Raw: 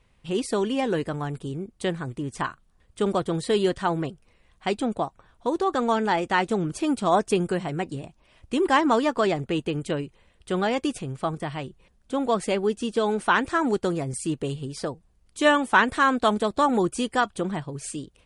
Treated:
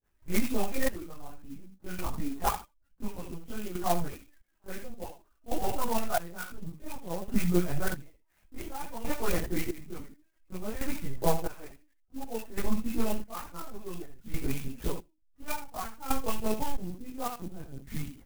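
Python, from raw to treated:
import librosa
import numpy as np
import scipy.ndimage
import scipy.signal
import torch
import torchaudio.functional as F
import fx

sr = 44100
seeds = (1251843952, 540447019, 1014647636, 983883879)

y = fx.spec_delay(x, sr, highs='late', ms=123)
y = fx.formant_shift(y, sr, semitones=-4)
y = fx.granulator(y, sr, seeds[0], grain_ms=100.0, per_s=20.0, spray_ms=18.0, spread_st=0)
y = fx.dereverb_blind(y, sr, rt60_s=0.61)
y = fx.high_shelf(y, sr, hz=2300.0, db=6.0)
y = fx.hum_notches(y, sr, base_hz=60, count=6)
y = fx.echo_feedback(y, sr, ms=70, feedback_pct=19, wet_db=-9.0)
y = fx.lpc_vocoder(y, sr, seeds[1], excitation='pitch_kept', order=10)
y = fx.rider(y, sr, range_db=4, speed_s=0.5)
y = fx.chorus_voices(y, sr, voices=6, hz=1.2, base_ms=20, depth_ms=3.1, mix_pct=65)
y = fx.step_gate(y, sr, bpm=68, pattern='.xxx....', floor_db=-12.0, edge_ms=4.5)
y = fx.clock_jitter(y, sr, seeds[2], jitter_ms=0.069)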